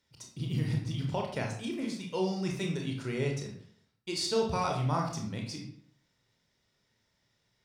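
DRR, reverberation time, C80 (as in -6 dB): 0.5 dB, 0.60 s, 9.0 dB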